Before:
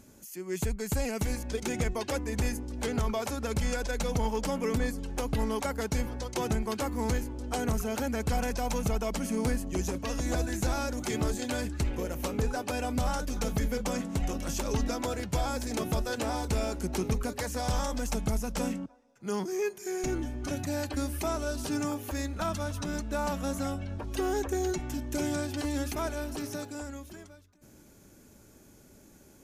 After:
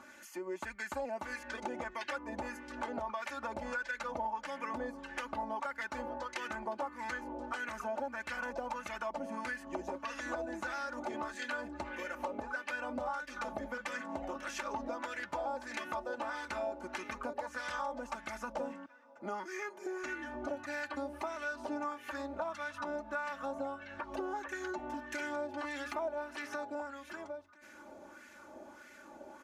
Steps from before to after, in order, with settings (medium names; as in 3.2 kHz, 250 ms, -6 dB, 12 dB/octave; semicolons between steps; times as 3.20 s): LFO band-pass sine 1.6 Hz 690–1900 Hz; comb 3.4 ms, depth 76%; compression 3:1, threshold -55 dBFS, peak gain reduction 17.5 dB; trim +14.5 dB